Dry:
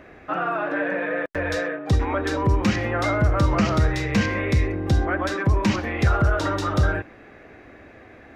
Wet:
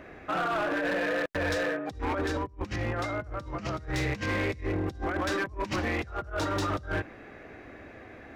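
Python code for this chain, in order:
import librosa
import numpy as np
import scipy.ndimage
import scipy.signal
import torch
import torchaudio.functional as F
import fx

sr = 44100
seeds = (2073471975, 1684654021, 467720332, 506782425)

y = fx.low_shelf(x, sr, hz=130.0, db=6.0, at=(2.28, 2.98))
y = fx.over_compress(y, sr, threshold_db=-25.0, ratio=-0.5)
y = np.clip(y, -10.0 ** (-20.5 / 20.0), 10.0 ** (-20.5 / 20.0))
y = y * 10.0 ** (-4.5 / 20.0)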